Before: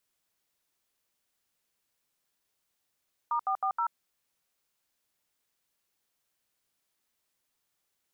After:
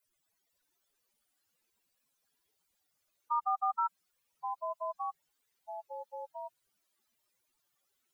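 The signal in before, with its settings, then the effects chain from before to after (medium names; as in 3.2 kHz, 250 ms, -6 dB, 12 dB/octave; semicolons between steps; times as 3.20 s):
DTMF "*440", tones 84 ms, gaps 74 ms, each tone -28.5 dBFS
spectral contrast enhancement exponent 3.6; ever faster or slower copies 502 ms, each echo -3 st, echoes 2, each echo -6 dB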